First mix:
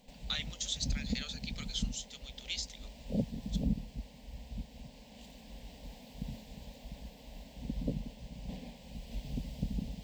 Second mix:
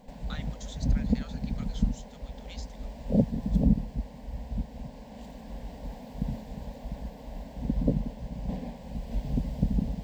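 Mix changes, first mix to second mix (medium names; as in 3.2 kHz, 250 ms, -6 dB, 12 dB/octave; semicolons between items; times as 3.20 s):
background +9.5 dB; master: add resonant high shelf 2 kHz -9.5 dB, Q 1.5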